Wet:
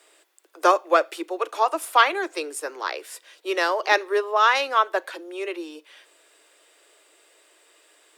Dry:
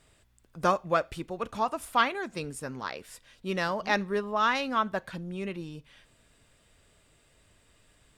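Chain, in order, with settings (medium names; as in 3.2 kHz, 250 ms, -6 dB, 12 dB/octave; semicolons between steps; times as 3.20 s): steep high-pass 310 Hz 96 dB/octave; treble shelf 12 kHz +4.5 dB; trim +7.5 dB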